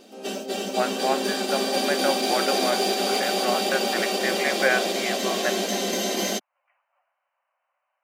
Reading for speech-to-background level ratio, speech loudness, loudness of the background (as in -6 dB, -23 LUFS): -4.0 dB, -28.5 LUFS, -24.5 LUFS